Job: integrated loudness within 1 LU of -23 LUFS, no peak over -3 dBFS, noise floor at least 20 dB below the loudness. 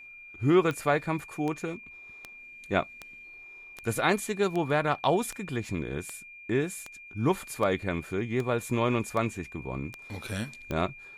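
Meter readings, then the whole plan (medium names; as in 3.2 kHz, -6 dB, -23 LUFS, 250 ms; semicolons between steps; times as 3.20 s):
clicks found 14; steady tone 2.4 kHz; tone level -45 dBFS; loudness -29.5 LUFS; peak level -10.5 dBFS; loudness target -23.0 LUFS
-> de-click; band-stop 2.4 kHz, Q 30; trim +6.5 dB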